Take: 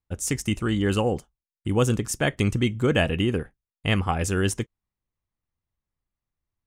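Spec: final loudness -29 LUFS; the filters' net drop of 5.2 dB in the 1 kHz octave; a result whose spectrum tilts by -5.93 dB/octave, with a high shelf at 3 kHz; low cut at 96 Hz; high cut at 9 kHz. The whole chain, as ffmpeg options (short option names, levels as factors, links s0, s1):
-af "highpass=96,lowpass=9000,equalizer=f=1000:t=o:g=-7,highshelf=f=3000:g=-5.5,volume=0.75"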